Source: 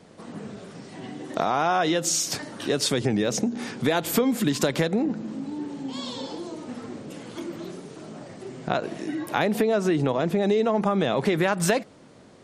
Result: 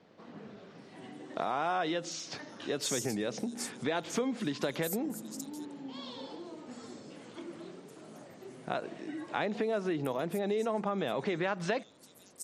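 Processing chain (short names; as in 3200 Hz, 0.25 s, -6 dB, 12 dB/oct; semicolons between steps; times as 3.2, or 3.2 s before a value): low shelf 130 Hz -10 dB; bands offset in time lows, highs 0.78 s, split 5500 Hz; gain -8.5 dB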